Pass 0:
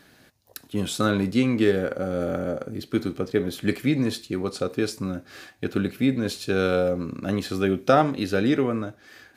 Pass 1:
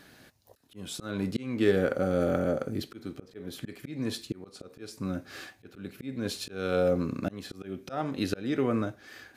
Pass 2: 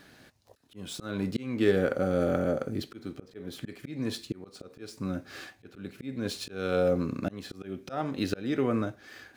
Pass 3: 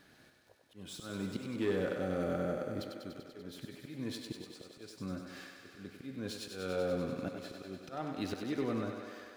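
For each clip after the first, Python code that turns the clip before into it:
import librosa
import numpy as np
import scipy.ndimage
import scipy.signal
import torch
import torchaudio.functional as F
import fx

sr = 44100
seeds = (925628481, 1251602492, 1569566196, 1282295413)

y1 = fx.auto_swell(x, sr, attack_ms=463.0)
y2 = scipy.signal.medfilt(y1, 3)
y3 = 10.0 ** (-17.0 / 20.0) * np.tanh(y2 / 10.0 ** (-17.0 / 20.0))
y3 = fx.echo_thinned(y3, sr, ms=97, feedback_pct=79, hz=210.0, wet_db=-6)
y3 = F.gain(torch.from_numpy(y3), -7.5).numpy()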